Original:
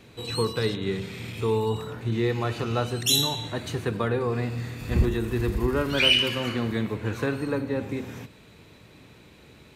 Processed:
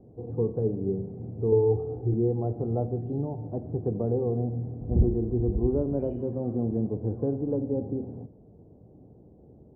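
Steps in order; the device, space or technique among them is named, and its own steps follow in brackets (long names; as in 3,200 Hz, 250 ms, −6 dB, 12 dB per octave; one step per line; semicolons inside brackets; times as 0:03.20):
under water (low-pass filter 530 Hz 24 dB per octave; parametric band 760 Hz +11 dB 0.34 octaves)
0:01.52–0:02.14: comb filter 2.5 ms, depth 93%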